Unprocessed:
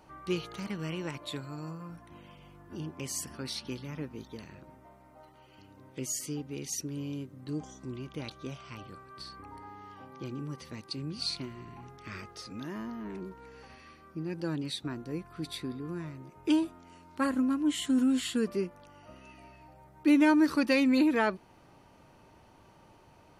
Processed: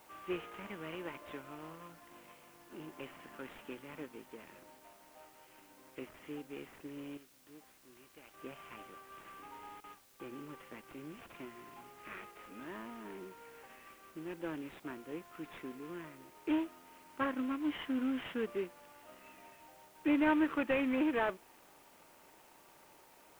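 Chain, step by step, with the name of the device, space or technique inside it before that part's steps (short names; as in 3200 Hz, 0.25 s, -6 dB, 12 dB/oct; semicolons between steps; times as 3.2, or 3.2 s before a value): 7.17–8.34 pre-emphasis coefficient 0.8; 9.8–10.2 gate with hold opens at -38 dBFS; army field radio (BPF 340–3300 Hz; CVSD 16 kbps; white noise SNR 25 dB); gain -2.5 dB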